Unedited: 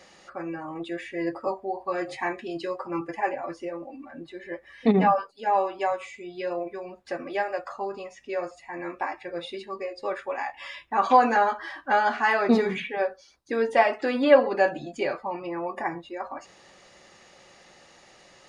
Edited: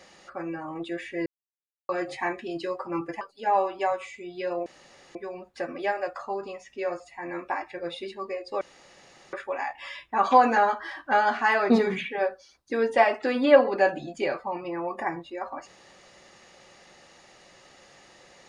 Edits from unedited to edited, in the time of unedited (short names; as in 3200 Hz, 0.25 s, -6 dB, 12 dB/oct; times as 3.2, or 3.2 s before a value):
1.26–1.89 mute
3.21–5.21 cut
6.66 insert room tone 0.49 s
10.12 insert room tone 0.72 s